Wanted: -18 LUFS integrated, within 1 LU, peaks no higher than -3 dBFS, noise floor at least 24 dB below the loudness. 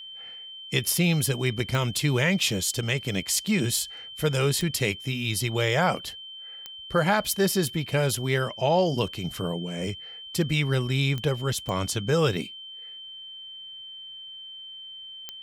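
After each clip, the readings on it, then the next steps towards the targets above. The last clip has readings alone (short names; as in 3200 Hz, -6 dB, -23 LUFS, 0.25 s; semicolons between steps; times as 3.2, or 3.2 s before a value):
clicks 7; steady tone 3100 Hz; tone level -39 dBFS; loudness -25.5 LUFS; peak -10.0 dBFS; loudness target -18.0 LUFS
-> de-click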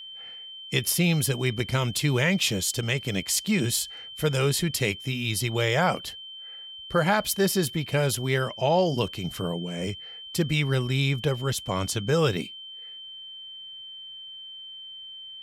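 clicks 0; steady tone 3100 Hz; tone level -39 dBFS
-> notch 3100 Hz, Q 30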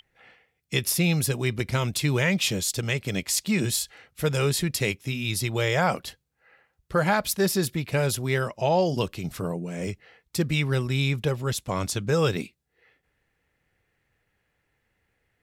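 steady tone none; loudness -26.0 LUFS; peak -10.0 dBFS; loudness target -18.0 LUFS
-> gain +8 dB; limiter -3 dBFS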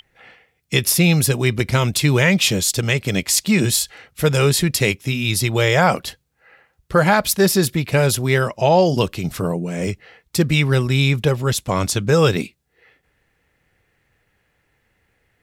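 loudness -18.0 LUFS; peak -3.0 dBFS; noise floor -67 dBFS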